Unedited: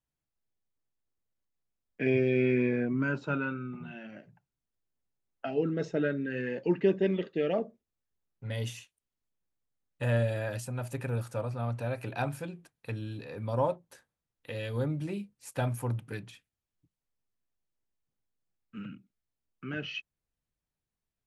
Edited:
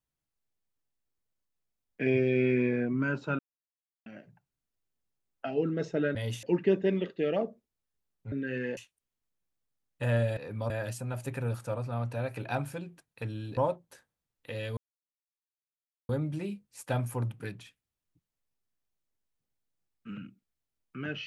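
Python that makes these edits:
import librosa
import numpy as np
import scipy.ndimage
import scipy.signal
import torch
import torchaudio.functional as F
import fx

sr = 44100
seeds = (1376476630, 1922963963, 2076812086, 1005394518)

y = fx.edit(x, sr, fx.silence(start_s=3.39, length_s=0.67),
    fx.swap(start_s=6.15, length_s=0.45, other_s=8.49, other_length_s=0.28),
    fx.move(start_s=13.24, length_s=0.33, to_s=10.37),
    fx.insert_silence(at_s=14.77, length_s=1.32), tone=tone)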